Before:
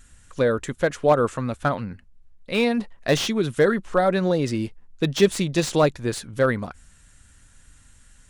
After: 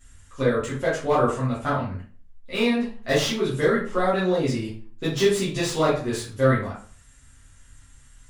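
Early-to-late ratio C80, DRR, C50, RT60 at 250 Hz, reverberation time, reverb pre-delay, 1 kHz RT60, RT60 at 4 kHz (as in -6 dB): 10.5 dB, -10.0 dB, 4.5 dB, 0.55 s, 0.45 s, 6 ms, 0.40 s, 0.35 s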